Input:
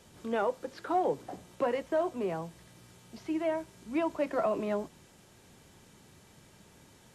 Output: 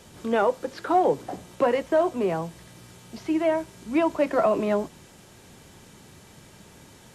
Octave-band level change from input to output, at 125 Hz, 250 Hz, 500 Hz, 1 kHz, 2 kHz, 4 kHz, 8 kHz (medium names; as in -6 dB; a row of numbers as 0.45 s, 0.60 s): +8.0 dB, +8.0 dB, +8.0 dB, +8.0 dB, +8.0 dB, +8.0 dB, +8.0 dB